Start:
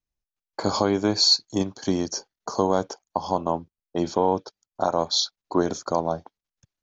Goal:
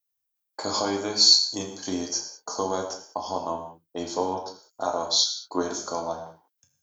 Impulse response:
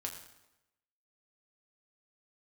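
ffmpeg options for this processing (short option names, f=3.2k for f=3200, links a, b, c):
-filter_complex "[0:a]aemphasis=mode=production:type=bsi[a];[1:a]atrim=start_sample=2205,afade=t=out:st=0.26:d=0.01,atrim=end_sample=11907[b];[a][b]afir=irnorm=-1:irlink=0,volume=-2dB"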